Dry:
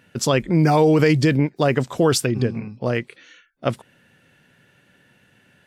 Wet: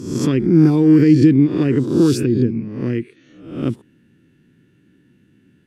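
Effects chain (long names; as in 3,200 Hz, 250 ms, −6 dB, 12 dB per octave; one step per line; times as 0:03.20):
peak hold with a rise ahead of every peak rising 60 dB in 0.68 s
low shelf with overshoot 450 Hz +11.5 dB, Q 3
level −10.5 dB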